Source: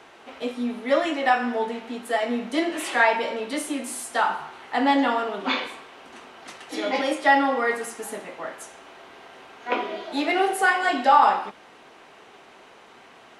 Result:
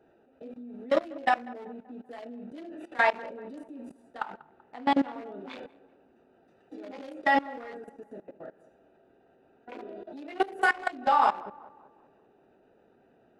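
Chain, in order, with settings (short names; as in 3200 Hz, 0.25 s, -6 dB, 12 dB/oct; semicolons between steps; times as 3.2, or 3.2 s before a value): Wiener smoothing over 41 samples; 4.02–5.34 high shelf 5100 Hz -5.5 dB; level quantiser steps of 21 dB; darkening echo 0.192 s, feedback 50%, low-pass 1600 Hz, level -19 dB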